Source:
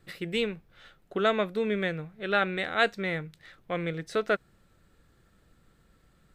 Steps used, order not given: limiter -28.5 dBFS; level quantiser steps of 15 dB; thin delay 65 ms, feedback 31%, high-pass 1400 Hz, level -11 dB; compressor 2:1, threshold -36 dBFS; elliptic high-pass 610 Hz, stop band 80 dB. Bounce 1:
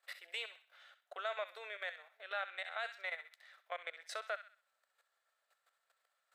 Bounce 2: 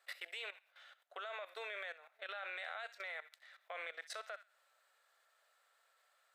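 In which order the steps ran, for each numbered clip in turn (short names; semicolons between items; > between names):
level quantiser > thin delay > compressor > elliptic high-pass > limiter; elliptic high-pass > limiter > thin delay > compressor > level quantiser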